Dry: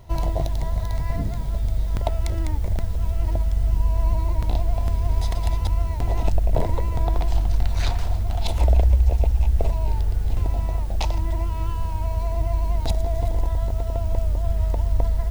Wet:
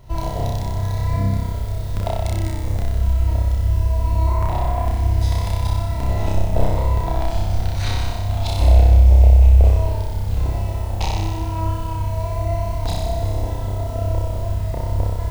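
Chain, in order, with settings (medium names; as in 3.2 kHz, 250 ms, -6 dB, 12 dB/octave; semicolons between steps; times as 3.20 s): 4.27–4.88 s: graphic EQ 1/2/4 kHz +10/+3/-6 dB; flutter echo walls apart 5.3 m, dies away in 1.3 s; trim -1 dB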